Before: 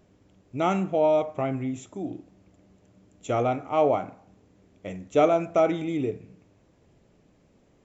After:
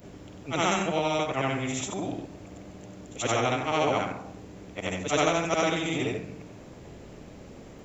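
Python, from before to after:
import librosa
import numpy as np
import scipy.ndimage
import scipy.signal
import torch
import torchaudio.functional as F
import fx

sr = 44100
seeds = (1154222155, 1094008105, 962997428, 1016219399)

y = fx.frame_reverse(x, sr, frame_ms=193.0)
y = fx.spectral_comp(y, sr, ratio=2.0)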